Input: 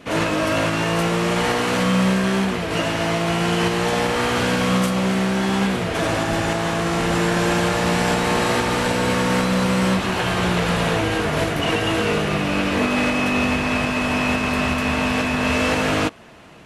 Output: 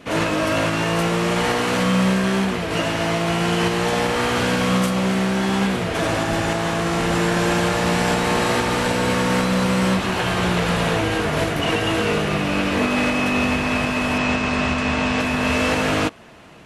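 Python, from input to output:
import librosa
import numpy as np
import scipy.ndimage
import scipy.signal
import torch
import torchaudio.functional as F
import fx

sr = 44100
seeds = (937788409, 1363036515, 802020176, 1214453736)

y = fx.lowpass(x, sr, hz=8100.0, slope=24, at=(14.18, 15.2))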